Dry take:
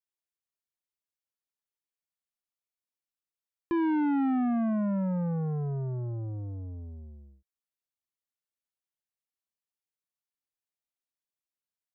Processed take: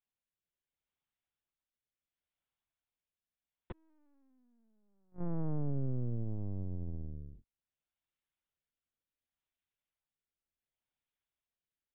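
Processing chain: compressor 5:1, threshold -37 dBFS, peak gain reduction 9.5 dB; flipped gate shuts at -35 dBFS, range -38 dB; rotary speaker horn 0.7 Hz; LPC vocoder at 8 kHz pitch kept; gain +5 dB

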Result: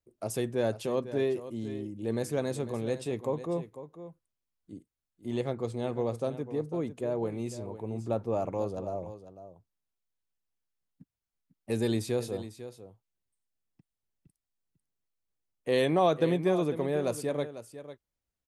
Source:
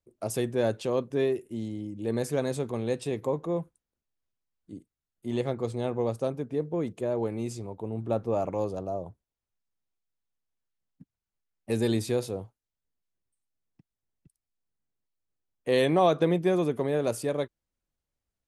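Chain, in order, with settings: echo 0.498 s -13 dB; gain -2.5 dB

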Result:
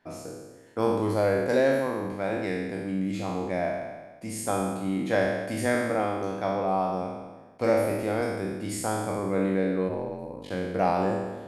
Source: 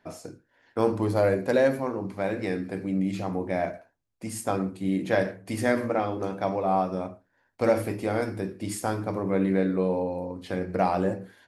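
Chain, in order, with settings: spectral trails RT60 1.30 s; 9.88–10.5 ring modulator 89 Hz -> 22 Hz; gain -3 dB

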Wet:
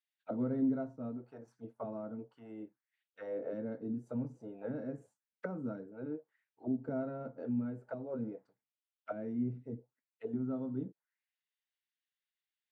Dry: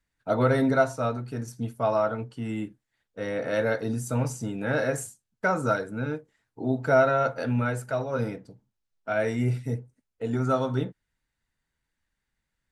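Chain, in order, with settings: auto-wah 240–3200 Hz, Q 2.4, down, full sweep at -24 dBFS; gain -5 dB

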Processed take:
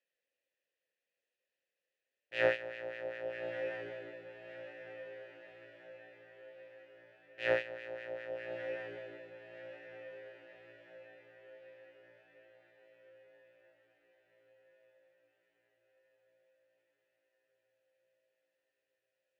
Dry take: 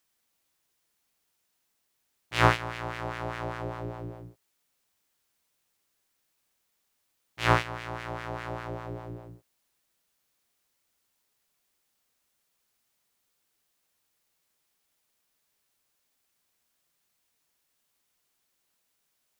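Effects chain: vowel filter e; on a send: diffused feedback echo 1.233 s, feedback 54%, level -10 dB; on the sum: gain +4 dB

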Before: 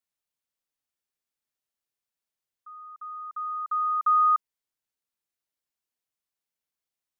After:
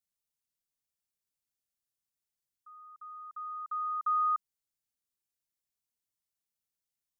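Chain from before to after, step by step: tone controls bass +9 dB, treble +8 dB; gain -8 dB

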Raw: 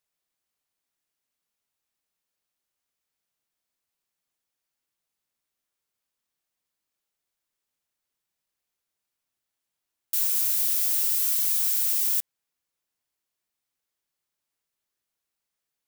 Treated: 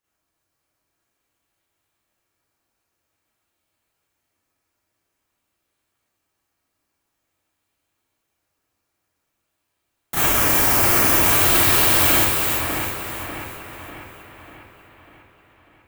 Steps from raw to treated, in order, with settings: in parallel at -3 dB: decimation with a swept rate 9×, swing 60% 0.49 Hz; on the sum: split-band echo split 2700 Hz, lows 0.595 s, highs 0.329 s, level -4.5 dB; reverb RT60 0.40 s, pre-delay 30 ms, DRR -7.5 dB; gain -3.5 dB

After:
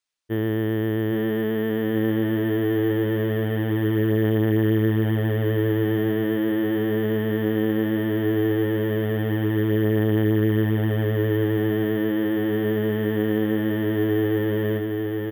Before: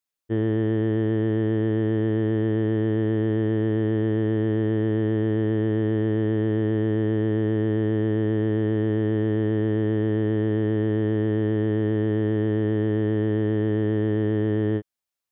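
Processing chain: tilt shelf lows -4.5 dB, about 1100 Hz; on a send: feedback echo 0.815 s, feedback 54%, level -4.5 dB; on the sum: careless resampling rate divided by 3×, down filtered, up hold; gain +3 dB

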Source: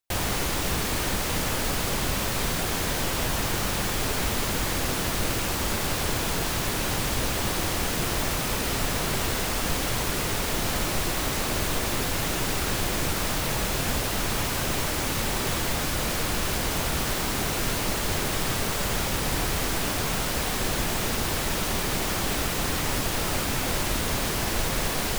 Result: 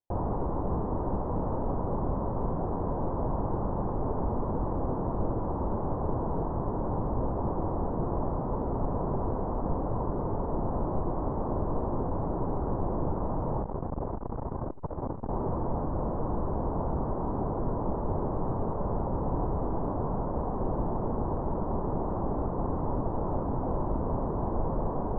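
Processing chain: elliptic low-pass 1000 Hz, stop band 70 dB; 13.62–15.29 core saturation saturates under 170 Hz

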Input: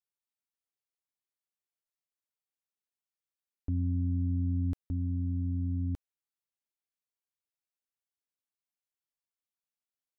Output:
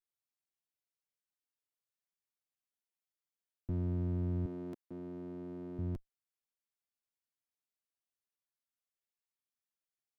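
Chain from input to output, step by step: minimum comb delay 8.7 ms; 4.46–5.79 Chebyshev high-pass 300 Hz, order 2; gain -3 dB

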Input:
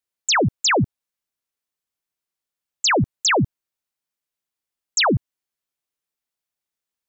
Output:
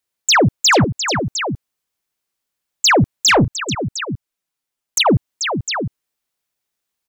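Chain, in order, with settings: tapped delay 0.438/0.707 s -10/-11 dB; 3.44–5.06 envelope flanger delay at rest 8.3 ms, full sweep at -23.5 dBFS; soft clip -13.5 dBFS, distortion -20 dB; gain +7 dB

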